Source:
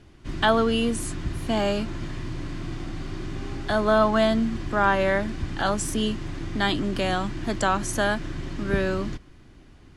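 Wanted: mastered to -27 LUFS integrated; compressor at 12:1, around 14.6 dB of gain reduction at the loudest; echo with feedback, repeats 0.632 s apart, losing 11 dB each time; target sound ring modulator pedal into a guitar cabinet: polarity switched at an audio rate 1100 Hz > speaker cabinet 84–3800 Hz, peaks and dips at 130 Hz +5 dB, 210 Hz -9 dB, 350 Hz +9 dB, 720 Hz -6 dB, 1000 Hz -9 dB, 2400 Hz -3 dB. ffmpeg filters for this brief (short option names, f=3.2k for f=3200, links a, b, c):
-af "acompressor=threshold=-30dB:ratio=12,aecho=1:1:632|1264|1896:0.282|0.0789|0.0221,aeval=exprs='val(0)*sgn(sin(2*PI*1100*n/s))':c=same,highpass=84,equalizer=f=130:t=q:w=4:g=5,equalizer=f=210:t=q:w=4:g=-9,equalizer=f=350:t=q:w=4:g=9,equalizer=f=720:t=q:w=4:g=-6,equalizer=f=1k:t=q:w=4:g=-9,equalizer=f=2.4k:t=q:w=4:g=-3,lowpass=f=3.8k:w=0.5412,lowpass=f=3.8k:w=1.3066,volume=9dB"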